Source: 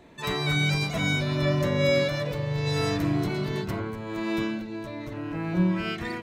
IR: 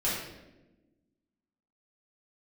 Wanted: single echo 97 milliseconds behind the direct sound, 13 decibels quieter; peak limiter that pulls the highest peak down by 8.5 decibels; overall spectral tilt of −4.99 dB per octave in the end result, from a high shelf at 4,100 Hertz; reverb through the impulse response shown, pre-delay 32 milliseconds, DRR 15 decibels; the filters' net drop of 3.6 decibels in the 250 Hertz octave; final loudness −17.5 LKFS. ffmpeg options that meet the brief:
-filter_complex "[0:a]equalizer=frequency=250:width_type=o:gain=-6,highshelf=frequency=4100:gain=4.5,alimiter=limit=-20.5dB:level=0:latency=1,aecho=1:1:97:0.224,asplit=2[link_01][link_02];[1:a]atrim=start_sample=2205,adelay=32[link_03];[link_02][link_03]afir=irnorm=-1:irlink=0,volume=-24dB[link_04];[link_01][link_04]amix=inputs=2:normalize=0,volume=12.5dB"

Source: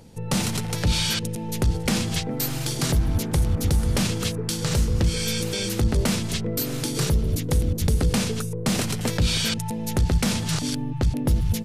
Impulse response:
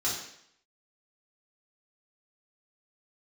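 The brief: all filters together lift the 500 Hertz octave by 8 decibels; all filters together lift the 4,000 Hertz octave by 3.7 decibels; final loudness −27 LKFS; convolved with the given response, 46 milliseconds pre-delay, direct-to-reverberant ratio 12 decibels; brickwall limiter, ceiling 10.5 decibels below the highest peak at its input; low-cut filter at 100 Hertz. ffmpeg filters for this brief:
-filter_complex "[0:a]highpass=100,equalizer=frequency=500:width_type=o:gain=9,equalizer=frequency=4000:width_type=o:gain=4.5,alimiter=limit=-16dB:level=0:latency=1,asplit=2[link_01][link_02];[1:a]atrim=start_sample=2205,adelay=46[link_03];[link_02][link_03]afir=irnorm=-1:irlink=0,volume=-19.5dB[link_04];[link_01][link_04]amix=inputs=2:normalize=0,volume=-2dB"

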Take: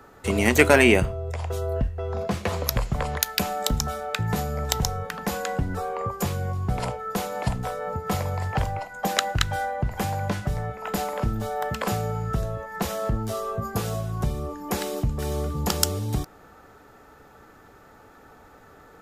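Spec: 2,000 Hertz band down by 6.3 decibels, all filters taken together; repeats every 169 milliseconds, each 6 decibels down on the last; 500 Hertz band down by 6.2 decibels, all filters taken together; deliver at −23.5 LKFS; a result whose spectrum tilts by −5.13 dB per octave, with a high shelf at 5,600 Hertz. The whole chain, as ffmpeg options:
ffmpeg -i in.wav -af "equalizer=frequency=500:width_type=o:gain=-7.5,equalizer=frequency=2000:width_type=o:gain=-7,highshelf=frequency=5600:gain=-5,aecho=1:1:169|338|507|676|845|1014:0.501|0.251|0.125|0.0626|0.0313|0.0157,volume=4.5dB" out.wav

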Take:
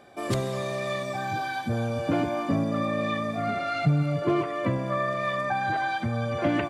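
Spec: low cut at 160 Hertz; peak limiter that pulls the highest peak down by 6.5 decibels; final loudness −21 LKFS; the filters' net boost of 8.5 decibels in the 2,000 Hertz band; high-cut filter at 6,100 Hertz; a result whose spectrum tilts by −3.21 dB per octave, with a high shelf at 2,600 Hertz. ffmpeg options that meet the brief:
ffmpeg -i in.wav -af "highpass=160,lowpass=6100,equalizer=frequency=2000:width_type=o:gain=8,highshelf=frequency=2600:gain=6.5,volume=5dB,alimiter=limit=-12dB:level=0:latency=1" out.wav

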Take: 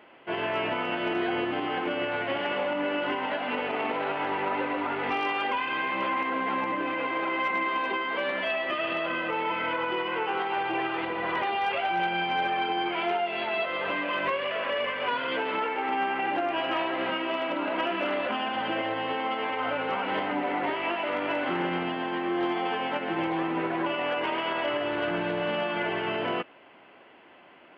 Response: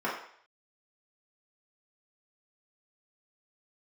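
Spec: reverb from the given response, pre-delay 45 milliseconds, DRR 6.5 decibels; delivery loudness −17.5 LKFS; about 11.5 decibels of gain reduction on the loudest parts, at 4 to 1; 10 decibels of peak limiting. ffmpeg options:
-filter_complex "[0:a]acompressor=threshold=-39dB:ratio=4,alimiter=level_in=14.5dB:limit=-24dB:level=0:latency=1,volume=-14.5dB,asplit=2[link_01][link_02];[1:a]atrim=start_sample=2205,adelay=45[link_03];[link_02][link_03]afir=irnorm=-1:irlink=0,volume=-16.5dB[link_04];[link_01][link_04]amix=inputs=2:normalize=0,volume=27.5dB"

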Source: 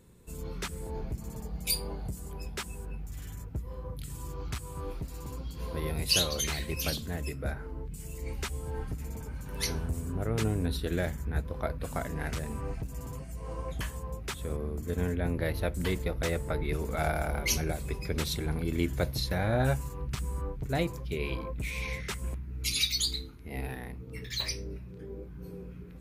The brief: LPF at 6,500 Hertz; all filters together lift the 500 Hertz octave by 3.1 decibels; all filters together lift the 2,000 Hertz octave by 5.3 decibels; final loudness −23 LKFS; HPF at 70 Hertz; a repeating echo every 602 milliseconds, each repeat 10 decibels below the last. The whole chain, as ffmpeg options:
ffmpeg -i in.wav -af "highpass=70,lowpass=6500,equalizer=frequency=500:width_type=o:gain=3.5,equalizer=frequency=2000:width_type=o:gain=6.5,aecho=1:1:602|1204|1806|2408:0.316|0.101|0.0324|0.0104,volume=9.5dB" out.wav

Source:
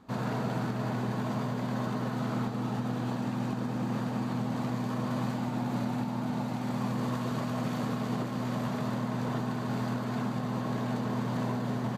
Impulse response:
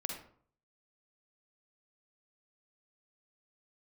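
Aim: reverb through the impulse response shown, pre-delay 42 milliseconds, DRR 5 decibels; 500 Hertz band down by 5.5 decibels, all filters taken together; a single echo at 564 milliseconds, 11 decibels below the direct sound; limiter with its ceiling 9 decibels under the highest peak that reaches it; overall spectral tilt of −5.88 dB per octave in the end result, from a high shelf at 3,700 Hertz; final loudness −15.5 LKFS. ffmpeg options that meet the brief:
-filter_complex "[0:a]equalizer=frequency=500:width_type=o:gain=-7.5,highshelf=frequency=3700:gain=7.5,alimiter=level_in=6.5dB:limit=-24dB:level=0:latency=1,volume=-6.5dB,aecho=1:1:564:0.282,asplit=2[link_01][link_02];[1:a]atrim=start_sample=2205,adelay=42[link_03];[link_02][link_03]afir=irnorm=-1:irlink=0,volume=-5.5dB[link_04];[link_01][link_04]amix=inputs=2:normalize=0,volume=21.5dB"

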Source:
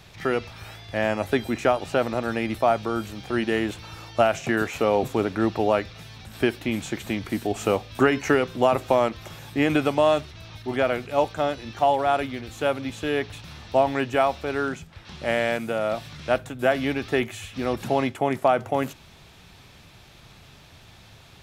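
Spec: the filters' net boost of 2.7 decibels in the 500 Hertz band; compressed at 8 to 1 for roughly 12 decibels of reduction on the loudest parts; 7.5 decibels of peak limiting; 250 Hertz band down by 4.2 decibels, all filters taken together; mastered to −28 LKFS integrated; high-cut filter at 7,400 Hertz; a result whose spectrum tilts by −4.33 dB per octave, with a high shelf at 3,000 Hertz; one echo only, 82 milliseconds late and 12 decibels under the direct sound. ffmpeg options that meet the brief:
ffmpeg -i in.wav -af "lowpass=7400,equalizer=frequency=250:width_type=o:gain=-7.5,equalizer=frequency=500:width_type=o:gain=5,highshelf=frequency=3000:gain=5.5,acompressor=threshold=-25dB:ratio=8,alimiter=limit=-19dB:level=0:latency=1,aecho=1:1:82:0.251,volume=4.5dB" out.wav

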